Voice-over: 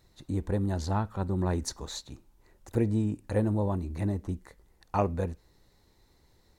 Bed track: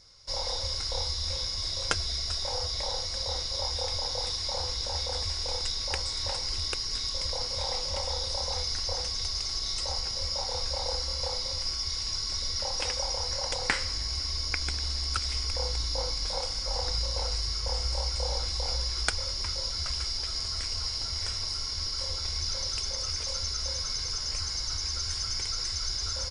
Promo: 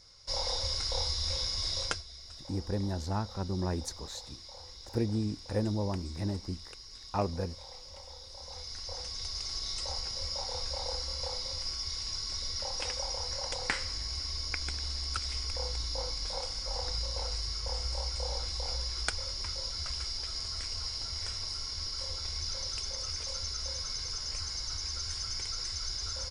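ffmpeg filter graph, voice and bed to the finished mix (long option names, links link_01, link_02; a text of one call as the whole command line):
ffmpeg -i stem1.wav -i stem2.wav -filter_complex "[0:a]adelay=2200,volume=-4dB[link_01];[1:a]volume=11dB,afade=type=out:start_time=1.8:duration=0.23:silence=0.16788,afade=type=in:start_time=8.32:duration=1.23:silence=0.251189[link_02];[link_01][link_02]amix=inputs=2:normalize=0" out.wav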